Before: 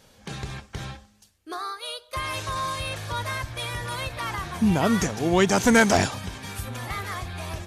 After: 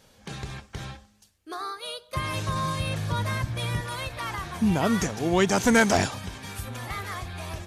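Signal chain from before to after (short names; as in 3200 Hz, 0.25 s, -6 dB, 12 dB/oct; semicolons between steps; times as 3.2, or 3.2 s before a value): 1.59–3.81 bell 170 Hz +14 dB 1.6 oct; gain -2 dB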